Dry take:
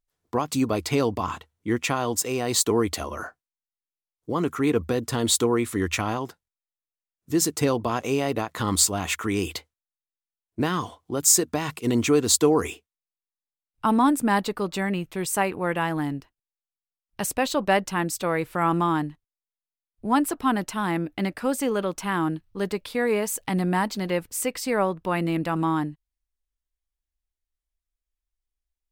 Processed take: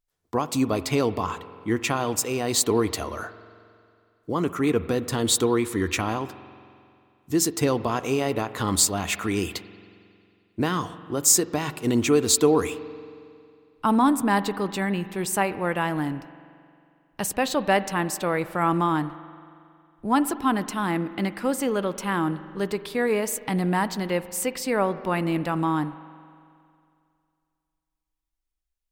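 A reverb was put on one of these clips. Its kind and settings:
spring reverb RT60 2.4 s, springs 45 ms, chirp 50 ms, DRR 14 dB

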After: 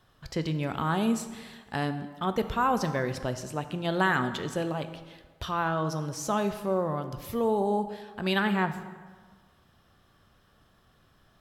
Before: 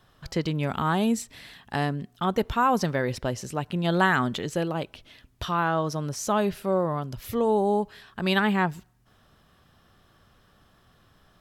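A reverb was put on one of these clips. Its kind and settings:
dense smooth reverb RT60 1.5 s, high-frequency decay 0.7×, DRR 9 dB
level −3.5 dB

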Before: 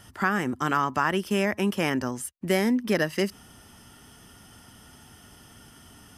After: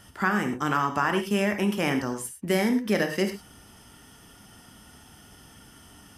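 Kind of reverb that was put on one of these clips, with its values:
reverb whose tail is shaped and stops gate 130 ms flat, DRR 5 dB
level −1 dB

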